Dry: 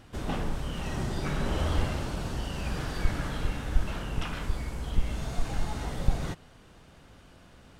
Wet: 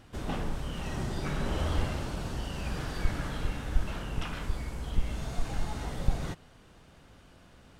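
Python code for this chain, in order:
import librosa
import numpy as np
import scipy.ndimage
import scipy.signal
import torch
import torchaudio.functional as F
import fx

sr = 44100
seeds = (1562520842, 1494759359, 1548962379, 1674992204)

y = x * librosa.db_to_amplitude(-2.0)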